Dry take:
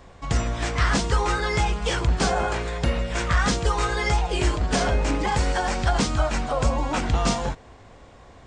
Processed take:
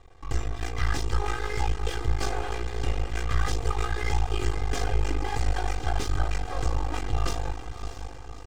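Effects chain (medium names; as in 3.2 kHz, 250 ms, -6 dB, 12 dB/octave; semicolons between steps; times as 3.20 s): bass shelf 130 Hz +5.5 dB; echo that smears into a reverb 630 ms, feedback 51%, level -9.5 dB; half-wave rectifier; comb 2.5 ms, depth 72%; trim -7.5 dB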